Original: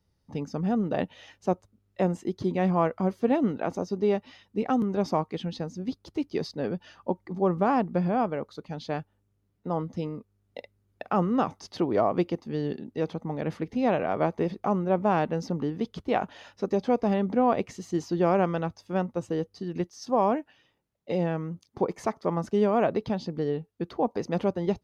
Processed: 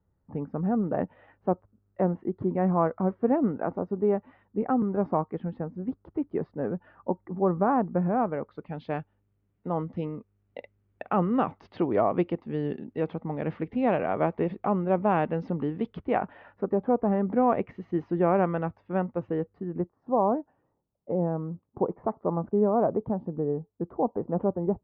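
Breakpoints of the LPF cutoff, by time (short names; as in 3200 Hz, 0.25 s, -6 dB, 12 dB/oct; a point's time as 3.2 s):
LPF 24 dB/oct
7.94 s 1600 Hz
8.88 s 2800 Hz
15.86 s 2800 Hz
16.94 s 1400 Hz
17.43 s 2200 Hz
19.35 s 2200 Hz
19.96 s 1100 Hz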